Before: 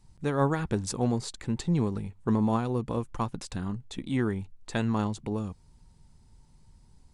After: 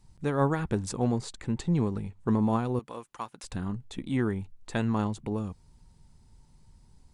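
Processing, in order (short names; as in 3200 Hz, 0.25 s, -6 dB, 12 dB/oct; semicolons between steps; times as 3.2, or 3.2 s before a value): 2.79–3.44 HPF 1200 Hz 6 dB/oct; dynamic EQ 5100 Hz, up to -4 dB, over -56 dBFS, Q 0.96; 0.89–2.23 LPF 9700 Hz 24 dB/oct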